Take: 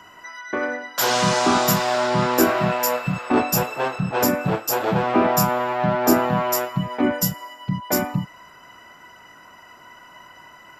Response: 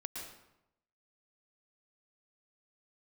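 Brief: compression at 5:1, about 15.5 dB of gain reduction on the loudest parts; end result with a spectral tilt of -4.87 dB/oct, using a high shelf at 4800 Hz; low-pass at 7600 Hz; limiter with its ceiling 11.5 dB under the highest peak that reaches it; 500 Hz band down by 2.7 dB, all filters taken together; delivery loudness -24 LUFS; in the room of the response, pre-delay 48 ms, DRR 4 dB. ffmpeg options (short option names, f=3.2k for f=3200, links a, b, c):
-filter_complex "[0:a]lowpass=7.6k,equalizer=f=500:t=o:g=-3.5,highshelf=f=4.8k:g=-7.5,acompressor=threshold=-32dB:ratio=5,alimiter=level_in=7dB:limit=-24dB:level=0:latency=1,volume=-7dB,asplit=2[a][b];[1:a]atrim=start_sample=2205,adelay=48[c];[b][c]afir=irnorm=-1:irlink=0,volume=-3dB[d];[a][d]amix=inputs=2:normalize=0,volume=15dB"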